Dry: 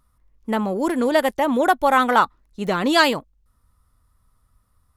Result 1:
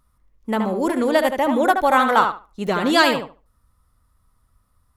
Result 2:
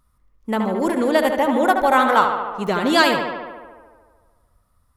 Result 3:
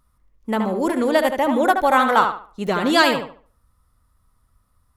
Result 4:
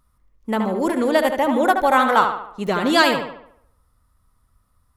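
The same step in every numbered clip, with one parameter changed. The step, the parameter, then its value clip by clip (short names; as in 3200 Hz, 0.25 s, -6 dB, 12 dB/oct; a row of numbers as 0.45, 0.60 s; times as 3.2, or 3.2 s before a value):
tape echo, feedback: 21, 77, 32, 51%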